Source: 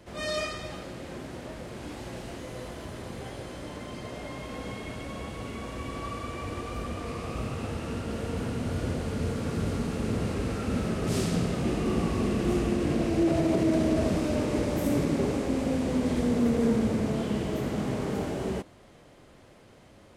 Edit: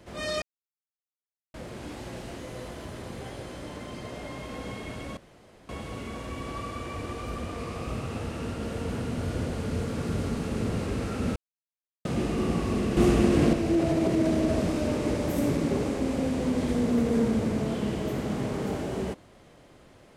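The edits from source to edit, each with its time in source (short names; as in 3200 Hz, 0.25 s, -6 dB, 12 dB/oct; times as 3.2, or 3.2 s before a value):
0.42–1.54 mute
5.17 insert room tone 0.52 s
10.84–11.53 mute
12.45–13.01 gain +5.5 dB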